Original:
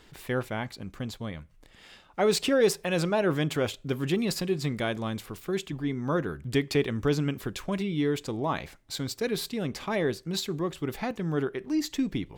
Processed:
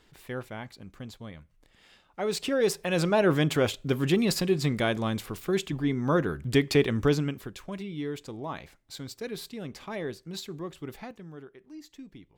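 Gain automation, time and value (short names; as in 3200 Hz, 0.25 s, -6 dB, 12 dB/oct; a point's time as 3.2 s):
2.21 s -6.5 dB
3.2 s +3 dB
7.05 s +3 dB
7.52 s -7 dB
10.93 s -7 dB
11.41 s -17.5 dB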